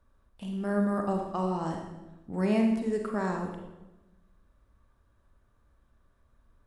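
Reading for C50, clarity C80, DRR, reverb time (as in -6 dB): 4.0 dB, 6.5 dB, 2.0 dB, 1.1 s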